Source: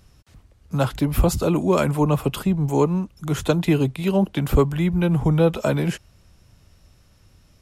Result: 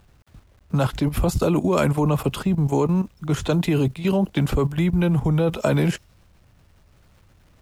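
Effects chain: level-controlled noise filter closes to 2 kHz, open at -17.5 dBFS; word length cut 10-bit, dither none; level held to a coarse grid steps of 12 dB; trim +5.5 dB

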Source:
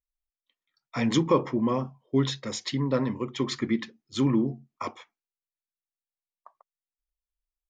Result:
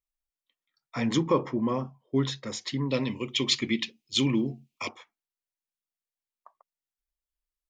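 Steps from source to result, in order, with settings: 2.89–4.89 s: resonant high shelf 2 kHz +9 dB, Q 3; trim -2 dB

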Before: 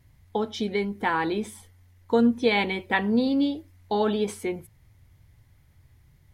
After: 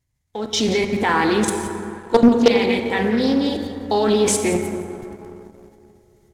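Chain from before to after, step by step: peaking EQ 7.1 kHz +11 dB 1.1 oct; hum notches 50/100/150/200 Hz; level held to a coarse grid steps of 18 dB; delay 176 ms -14.5 dB; level rider gain up to 15 dB; plate-style reverb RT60 3.5 s, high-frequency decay 0.35×, DRR 5 dB; waveshaping leveller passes 1; loudspeaker Doppler distortion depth 0.44 ms; trim -1 dB

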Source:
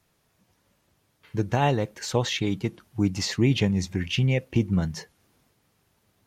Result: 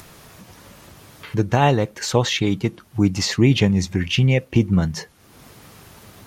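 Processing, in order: peaking EQ 1.2 kHz +2.5 dB 0.36 oct; in parallel at 0 dB: upward compressor, threshold -26 dBFS

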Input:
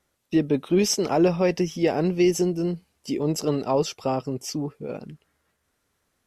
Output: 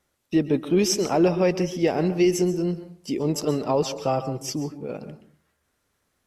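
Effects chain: 3.97–4.55 s: comb 6.1 ms, depth 58%; on a send: reverberation RT60 0.50 s, pre-delay 118 ms, DRR 11.5 dB

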